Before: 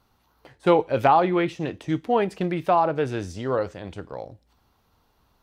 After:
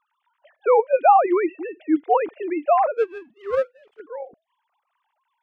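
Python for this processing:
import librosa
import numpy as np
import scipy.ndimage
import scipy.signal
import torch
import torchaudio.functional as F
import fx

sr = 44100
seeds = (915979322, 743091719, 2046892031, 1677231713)

y = fx.sine_speech(x, sr)
y = fx.power_curve(y, sr, exponent=1.4, at=(2.97, 4.0))
y = y * 10.0 ** (2.5 / 20.0)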